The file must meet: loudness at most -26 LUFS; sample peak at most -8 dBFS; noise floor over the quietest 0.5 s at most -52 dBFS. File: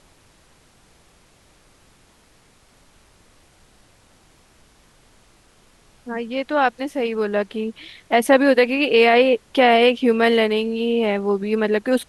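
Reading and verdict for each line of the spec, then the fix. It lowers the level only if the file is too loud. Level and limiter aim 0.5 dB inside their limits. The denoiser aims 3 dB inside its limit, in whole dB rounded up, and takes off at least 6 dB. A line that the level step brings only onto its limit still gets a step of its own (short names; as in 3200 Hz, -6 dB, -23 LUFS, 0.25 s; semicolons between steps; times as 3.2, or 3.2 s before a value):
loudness -18.5 LUFS: fail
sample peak -4.5 dBFS: fail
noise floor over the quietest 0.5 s -55 dBFS: OK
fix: gain -8 dB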